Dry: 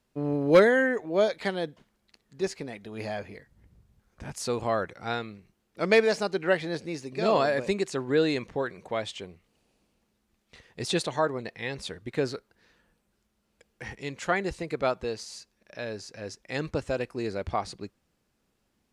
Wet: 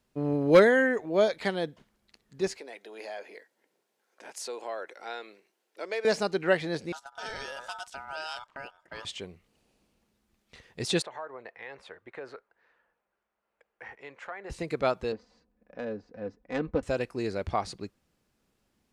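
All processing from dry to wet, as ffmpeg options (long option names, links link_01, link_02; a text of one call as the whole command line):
ffmpeg -i in.wav -filter_complex "[0:a]asettb=1/sr,asplit=3[link_01][link_02][link_03];[link_01]atrim=end=2.574[link_04];[link_02]atrim=start=2.57:end=6.05,asetpts=PTS-STARTPTS,afade=type=in:duration=0.004:curve=qsin,afade=type=out:start_time=3.476:duration=0.004:curve=qsin,bandreject=frequency=1200:width=8.9,acompressor=threshold=-37dB:ratio=2:attack=3.2:release=140:knee=1:detection=peak,highpass=frequency=370:width=0.5412,highpass=frequency=370:width=1.3066[link_05];[link_03]atrim=start=6.046[link_06];[link_04][link_05]acrossfade=duration=0.004:curve1=hsin:curve2=qsin[link_07];[link_07][link_06]acrossfade=duration=0.004:curve1=qsin:curve2=hsin,asettb=1/sr,asplit=3[link_08][link_09][link_10];[link_08]atrim=end=6.924[link_11];[link_09]atrim=start=6.92:end=9.05,asetpts=PTS-STARTPTS,afade=type=in:duration=0.004:curve=qsin,afade=type=out:start_time=2.126:duration=0.004:curve=qsin,agate=range=-13dB:threshold=-39dB:ratio=16:release=100:detection=peak,acrossover=split=140|3000[link_12][link_13][link_14];[link_13]acompressor=threshold=-39dB:ratio=3:attack=3.2:release=140:knee=2.83:detection=peak[link_15];[link_12][link_15][link_14]amix=inputs=3:normalize=0,aeval=exprs='val(0)*sin(2*PI*1100*n/s)':channel_layout=same[link_16];[link_10]atrim=start=9.046[link_17];[link_11][link_16]acrossfade=duration=0.004:curve1=hsin:curve2=qsin[link_18];[link_18][link_17]acrossfade=duration=0.004:curve1=qsin:curve2=hsin,asettb=1/sr,asplit=3[link_19][link_20][link_21];[link_19]atrim=end=11.024[link_22];[link_20]atrim=start=11.02:end=14.5,asetpts=PTS-STARTPTS,afade=type=in:duration=0.004:curve=qsin,afade=type=out:start_time=3.476:duration=0.004:curve=qsin,acrossover=split=480 2200:gain=0.0891 1 0.0891[link_23][link_24][link_25];[link_23][link_24][link_25]amix=inputs=3:normalize=0,acompressor=threshold=-38dB:ratio=3:attack=3.2:release=140:knee=1:detection=peak[link_26];[link_21]atrim=start=14.496[link_27];[link_22][link_26]acrossfade=duration=0.004:curve1=hsin:curve2=qsin[link_28];[link_28][link_27]acrossfade=duration=0.004:curve1=qsin:curve2=hsin,asettb=1/sr,asplit=3[link_29][link_30][link_31];[link_29]atrim=end=15.124[link_32];[link_30]atrim=start=15.12:end=16.83,asetpts=PTS-STARTPTS,afade=type=in:duration=0.004:curve=qsin,afade=type=out:start_time=1.706:duration=0.004:curve=qsin,aecho=1:1:4:0.66,atrim=end_sample=75411,adynamicsmooth=sensitivity=1:basefreq=1000[link_33];[link_31]atrim=start=16.826[link_34];[link_32][link_33]acrossfade=duration=0.004:curve1=hsin:curve2=qsin[link_35];[link_35][link_34]acrossfade=duration=0.004:curve1=qsin:curve2=hsin" out.wav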